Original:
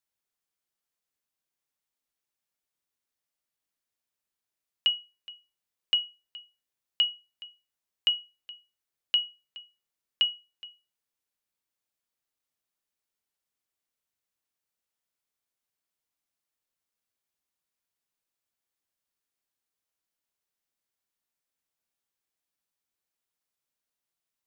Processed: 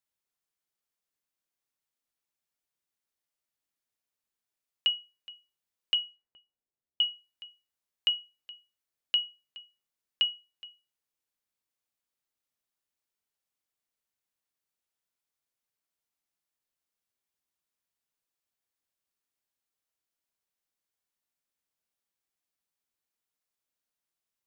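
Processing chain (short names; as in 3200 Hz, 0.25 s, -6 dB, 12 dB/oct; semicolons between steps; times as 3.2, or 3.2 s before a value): 5.94–7.06 low-pass opened by the level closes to 560 Hz, open at -28.5 dBFS; dynamic EQ 500 Hz, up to +6 dB, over -52 dBFS, Q 0.87; gain -2 dB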